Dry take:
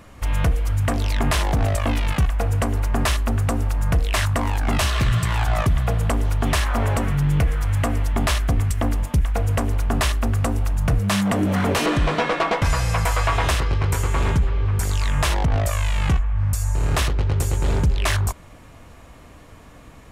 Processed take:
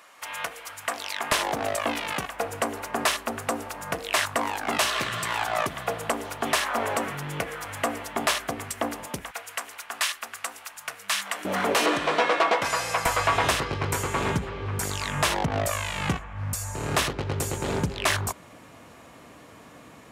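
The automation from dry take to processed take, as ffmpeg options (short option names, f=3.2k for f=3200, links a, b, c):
-af "asetnsamples=n=441:p=0,asendcmd='1.32 highpass f 370;9.31 highpass f 1400;11.45 highpass f 380;13.06 highpass f 170',highpass=850"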